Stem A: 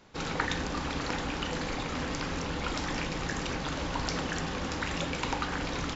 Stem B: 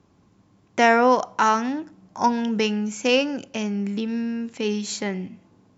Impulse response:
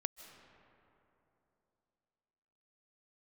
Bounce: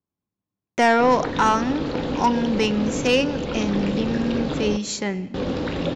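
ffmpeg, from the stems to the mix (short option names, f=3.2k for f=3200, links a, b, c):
-filter_complex "[0:a]acrossover=split=3400[a][b];[b]acompressor=threshold=-57dB:ratio=4:attack=1:release=60[c];[a][c]amix=inputs=2:normalize=0,equalizer=f=125:t=o:w=1:g=6,equalizer=f=250:t=o:w=1:g=7,equalizer=f=500:t=o:w=1:g=10,equalizer=f=1k:t=o:w=1:g=-3,equalizer=f=2k:t=o:w=1:g=-4,equalizer=f=4k:t=o:w=1:g=8,adelay=850,volume=-2dB,asplit=3[d][e][f];[d]atrim=end=4.77,asetpts=PTS-STARTPTS,afade=t=out:st=4.766:d=0.004:c=hsin[g];[e]atrim=start=4.77:end=5.34,asetpts=PTS-STARTPTS,volume=0[h];[f]atrim=start=5.34,asetpts=PTS-STARTPTS,afade=t=in:d=0.004:c=hsin[i];[g][h][i]concat=n=3:v=0:a=1,asplit=2[j][k];[k]volume=-3dB[l];[1:a]agate=range=-31dB:threshold=-48dB:ratio=16:detection=peak,asoftclip=type=tanh:threshold=-10.5dB,volume=0dB,asplit=3[m][n][o];[n]volume=-11.5dB[p];[o]apad=whole_len=300080[q];[j][q]sidechaincompress=threshold=-22dB:ratio=8:attack=16:release=957[r];[2:a]atrim=start_sample=2205[s];[l][p]amix=inputs=2:normalize=0[t];[t][s]afir=irnorm=-1:irlink=0[u];[r][m][u]amix=inputs=3:normalize=0"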